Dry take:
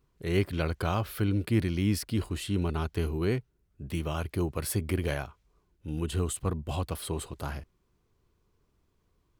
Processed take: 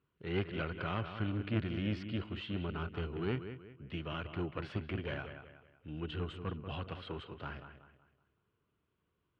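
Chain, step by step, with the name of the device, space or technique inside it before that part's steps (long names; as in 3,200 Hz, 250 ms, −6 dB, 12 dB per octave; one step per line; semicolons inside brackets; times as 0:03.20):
analogue delay pedal into a guitar amplifier (bucket-brigade delay 187 ms, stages 4,096, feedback 36%, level −10 dB; tube saturation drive 19 dB, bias 0.75; loudspeaker in its box 94–3,500 Hz, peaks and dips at 800 Hz −3 dB, 1,400 Hz +6 dB, 2,900 Hz +6 dB)
level −2.5 dB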